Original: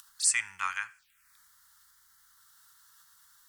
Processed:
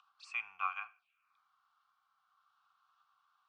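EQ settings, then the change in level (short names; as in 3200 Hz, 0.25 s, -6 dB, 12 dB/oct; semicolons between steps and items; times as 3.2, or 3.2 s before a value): vowel filter a; air absorption 200 m; notch 1700 Hz, Q 8.6; +9.0 dB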